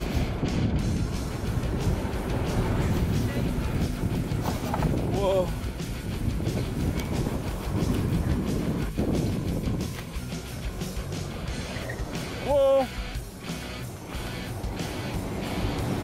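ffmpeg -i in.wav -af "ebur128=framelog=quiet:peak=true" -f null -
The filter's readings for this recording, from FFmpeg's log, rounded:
Integrated loudness:
  I:         -28.9 LUFS
  Threshold: -38.9 LUFS
Loudness range:
  LRA:         3.3 LU
  Threshold: -48.7 LUFS
  LRA low:   -30.9 LUFS
  LRA high:  -27.6 LUFS
True peak:
  Peak:      -12.5 dBFS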